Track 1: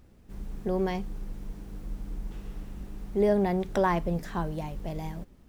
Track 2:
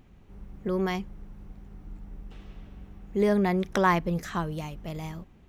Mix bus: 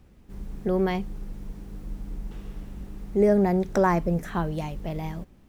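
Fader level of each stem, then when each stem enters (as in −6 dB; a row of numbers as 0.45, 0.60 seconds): 0.0, −4.5 decibels; 0.00, 0.00 seconds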